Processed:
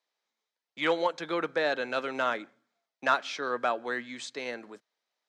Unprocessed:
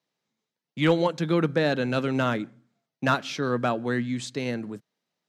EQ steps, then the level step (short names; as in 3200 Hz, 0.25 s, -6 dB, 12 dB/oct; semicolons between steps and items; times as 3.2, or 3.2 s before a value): notch 2800 Hz, Q 19; dynamic EQ 4700 Hz, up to -3 dB, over -43 dBFS, Q 0.86; BPF 580–7000 Hz; 0.0 dB